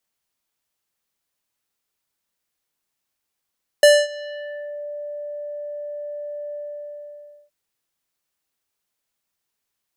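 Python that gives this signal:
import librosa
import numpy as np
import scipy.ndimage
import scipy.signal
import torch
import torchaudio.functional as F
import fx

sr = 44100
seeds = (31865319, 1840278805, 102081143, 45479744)

y = fx.sub_voice(sr, note=74, wave='square', cutoff_hz=840.0, q=0.95, env_oct=4.0, env_s=1.03, attack_ms=2.4, decay_s=0.24, sustain_db=-23.5, release_s=0.96, note_s=2.71, slope=24)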